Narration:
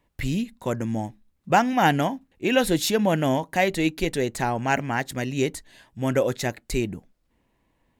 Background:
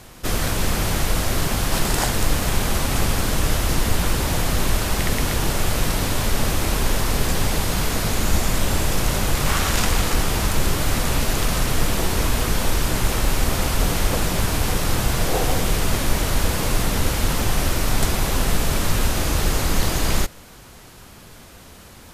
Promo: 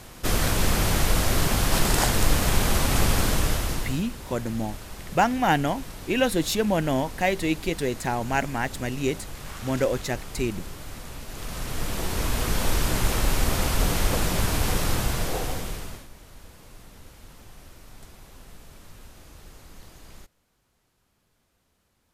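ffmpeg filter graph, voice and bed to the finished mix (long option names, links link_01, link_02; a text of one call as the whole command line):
ffmpeg -i stem1.wav -i stem2.wav -filter_complex "[0:a]adelay=3650,volume=-2dB[link_01];[1:a]volume=14dB,afade=type=out:start_time=3.23:duration=0.81:silence=0.141254,afade=type=in:start_time=11.27:duration=1.46:silence=0.177828,afade=type=out:start_time=14.81:duration=1.27:silence=0.0630957[link_02];[link_01][link_02]amix=inputs=2:normalize=0" out.wav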